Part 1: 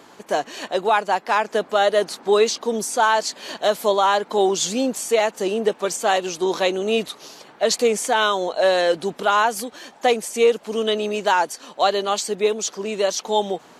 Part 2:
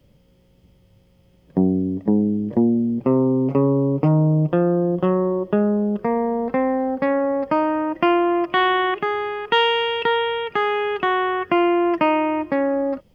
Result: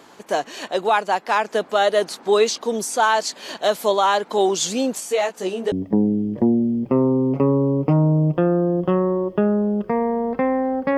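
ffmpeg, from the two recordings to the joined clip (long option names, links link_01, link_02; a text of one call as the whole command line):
ffmpeg -i cue0.wav -i cue1.wav -filter_complex "[0:a]asettb=1/sr,asplit=3[link_01][link_02][link_03];[link_01]atrim=end=5.004[link_04];[link_02]atrim=start=5:end=5.72,asetpts=PTS-STARTPTS,afade=type=in:duration=0.004:curve=qsin,afade=type=out:start_time=0.716:duration=0.004:curve=qsin,flanger=delay=15.5:depth=6.3:speed=0.24[link_05];[link_03]atrim=start=5.716[link_06];[link_04][link_05]acrossfade=duration=0.004:curve1=hsin:curve2=qsin[link_07];[link_07][link_06]acrossfade=duration=0.004:curve1=qsin:curve2=hsin,apad=whole_dur=10.97,atrim=end=10.97,atrim=end=5.722[link_08];[1:a]atrim=start=1.868:end=7.12[link_09];[link_08][link_09]acrossfade=duration=0.004:curve1=hsin:curve2=hsin" out.wav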